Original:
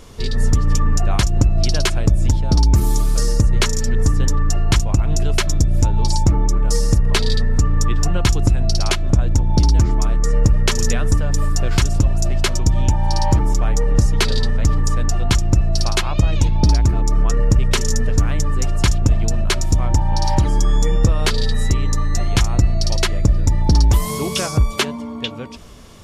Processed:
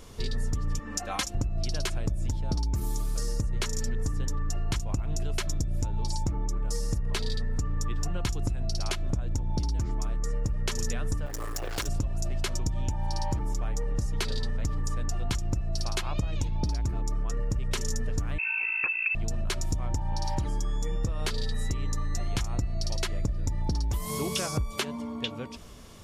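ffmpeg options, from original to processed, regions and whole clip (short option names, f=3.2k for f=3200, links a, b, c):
-filter_complex "[0:a]asettb=1/sr,asplit=3[a][b][c];[a]atrim=end=0.794[d];[b]atrim=start=0.79:end=1.35,asetpts=PTS-STARTPTS,afade=t=in:d=0.004:c=qsin,afade=t=out:st=0.556:d=0.004:c=qsin,highpass=f=550:p=1,aecho=1:1:3.8:0.94,atrim=end_sample=24696[e];[c]atrim=start=1.346[f];[d][e]acrossfade=d=0.004:c1=hsin:c2=qsin[g];[g][f]acrossfade=d=0.004:c1=qsin:c2=hsin,asettb=1/sr,asplit=3[h][i][j];[h]atrim=end=11.264[k];[i]atrim=start=11.26:end=11.88,asetpts=PTS-STARTPTS,afade=t=in:d=0.004:c=qsin,afade=t=out:st=0.616:d=0.004:c=qsin,asoftclip=type=hard:threshold=-15.5dB,lowshelf=f=250:t=q:w=1.5:g=-9,acrusher=bits=9:dc=4:mix=0:aa=0.000001[l];[j]atrim=start=11.876[m];[k][l]acrossfade=d=0.004:c1=hsin:c2=qsin[n];[n][m]acrossfade=d=0.004:c1=qsin:c2=hsin,asettb=1/sr,asplit=3[o][p][q];[o]atrim=end=18.384[r];[p]atrim=start=18.38:end=19.15,asetpts=PTS-STARTPTS,afade=t=in:d=0.004:c=qsin,afade=t=out:st=0.766:d=0.004:c=qsin,highpass=f=52:p=1,bandreject=f=2.1k:w=13,lowpass=f=2.3k:t=q:w=0.5098,lowpass=f=2.3k:t=q:w=0.6013,lowpass=f=2.3k:t=q:w=0.9,lowpass=f=2.3k:t=q:w=2.563,afreqshift=-2700[s];[q]atrim=start=19.146[t];[r][s]acrossfade=d=0.004:c1=hsin:c2=qsin[u];[u][t]acrossfade=d=0.004:c1=qsin:c2=hsin,highshelf=f=10k:g=4.5,acompressor=threshold=-19dB:ratio=6,volume=-6.5dB"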